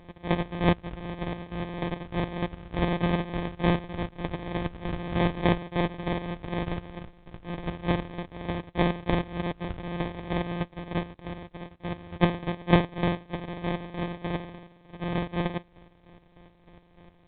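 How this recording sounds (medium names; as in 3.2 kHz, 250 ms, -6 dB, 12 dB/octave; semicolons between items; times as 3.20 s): a buzz of ramps at a fixed pitch in blocks of 256 samples; chopped level 3.3 Hz, depth 65%, duty 40%; aliases and images of a low sample rate 1.4 kHz, jitter 0%; A-law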